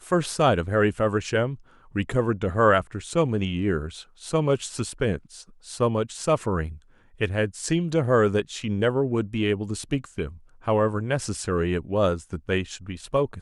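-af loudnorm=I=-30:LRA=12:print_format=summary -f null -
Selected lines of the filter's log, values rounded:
Input Integrated:    -25.3 LUFS
Input True Peak:      -6.7 dBTP
Input LRA:             2.2 LU
Input Threshold:     -35.6 LUFS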